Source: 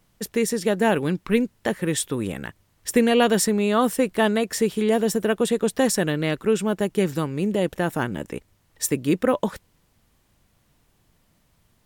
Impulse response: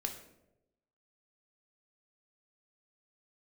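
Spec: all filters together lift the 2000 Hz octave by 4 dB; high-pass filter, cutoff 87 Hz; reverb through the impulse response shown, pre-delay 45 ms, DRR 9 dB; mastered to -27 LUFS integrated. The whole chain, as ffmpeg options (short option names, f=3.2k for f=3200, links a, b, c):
-filter_complex "[0:a]highpass=87,equalizer=f=2k:t=o:g=5,asplit=2[a][b];[1:a]atrim=start_sample=2205,adelay=45[c];[b][c]afir=irnorm=-1:irlink=0,volume=-9.5dB[d];[a][d]amix=inputs=2:normalize=0,volume=-5dB"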